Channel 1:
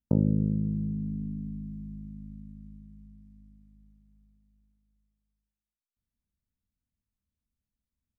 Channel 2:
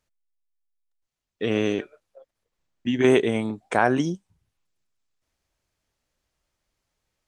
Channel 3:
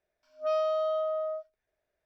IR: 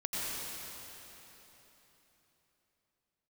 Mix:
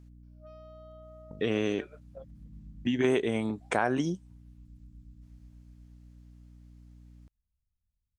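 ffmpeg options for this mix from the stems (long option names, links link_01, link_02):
-filter_complex "[0:a]asubboost=boost=12:cutoff=110,acompressor=threshold=-33dB:ratio=6,adelay=1200,volume=-12.5dB[link_01];[1:a]aeval=exprs='val(0)+0.00224*(sin(2*PI*60*n/s)+sin(2*PI*2*60*n/s)/2+sin(2*PI*3*60*n/s)/3+sin(2*PI*4*60*n/s)/4+sin(2*PI*5*60*n/s)/5)':channel_layout=same,volume=2dB,asplit=2[link_02][link_03];[2:a]acompressor=threshold=-32dB:ratio=6,volume=-17.5dB[link_04];[link_03]apad=whole_len=413882[link_05];[link_01][link_05]sidechaincompress=threshold=-40dB:ratio=8:attack=16:release=510[link_06];[link_06][link_02][link_04]amix=inputs=3:normalize=0,acompressor=threshold=-30dB:ratio=2"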